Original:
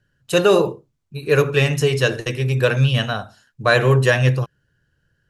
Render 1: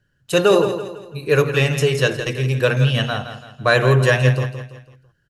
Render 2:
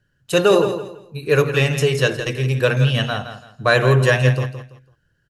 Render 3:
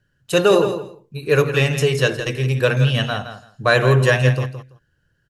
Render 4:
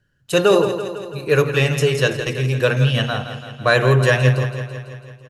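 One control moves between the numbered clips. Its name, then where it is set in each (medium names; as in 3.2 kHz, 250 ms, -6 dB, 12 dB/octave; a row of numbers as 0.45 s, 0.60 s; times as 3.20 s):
feedback delay, feedback: 41%, 27%, 16%, 62%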